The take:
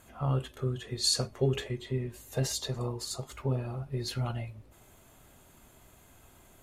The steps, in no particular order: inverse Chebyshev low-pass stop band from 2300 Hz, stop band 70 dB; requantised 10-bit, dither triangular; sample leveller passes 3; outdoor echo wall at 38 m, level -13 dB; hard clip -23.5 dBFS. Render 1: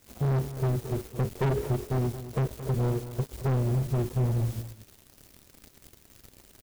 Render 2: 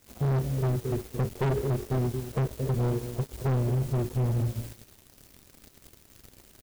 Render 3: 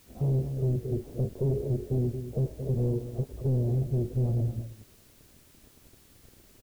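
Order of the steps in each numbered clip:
inverse Chebyshev low-pass > requantised > sample leveller > hard clip > outdoor echo; inverse Chebyshev low-pass > requantised > outdoor echo > sample leveller > hard clip; sample leveller > outdoor echo > hard clip > inverse Chebyshev low-pass > requantised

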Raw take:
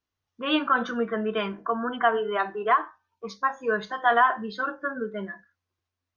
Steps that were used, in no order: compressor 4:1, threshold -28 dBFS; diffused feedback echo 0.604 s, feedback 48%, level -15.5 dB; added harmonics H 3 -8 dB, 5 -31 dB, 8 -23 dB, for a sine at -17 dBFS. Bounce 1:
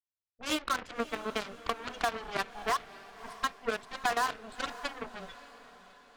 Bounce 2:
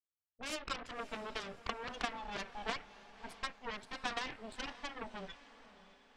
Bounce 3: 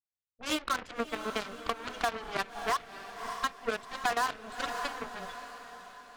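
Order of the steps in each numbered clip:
added harmonics > compressor > diffused feedback echo; compressor > added harmonics > diffused feedback echo; added harmonics > diffused feedback echo > compressor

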